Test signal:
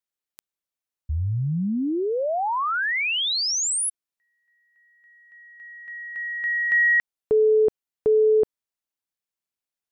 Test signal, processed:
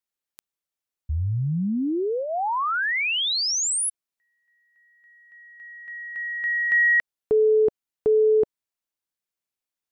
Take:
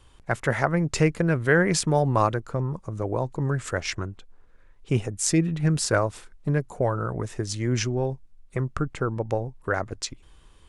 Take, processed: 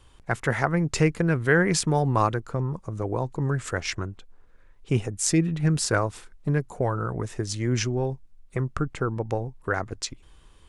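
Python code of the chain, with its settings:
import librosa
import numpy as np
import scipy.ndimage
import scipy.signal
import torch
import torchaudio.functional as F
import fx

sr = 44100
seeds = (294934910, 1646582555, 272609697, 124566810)

y = fx.dynamic_eq(x, sr, hz=590.0, q=5.7, threshold_db=-43.0, ratio=3.0, max_db=-6)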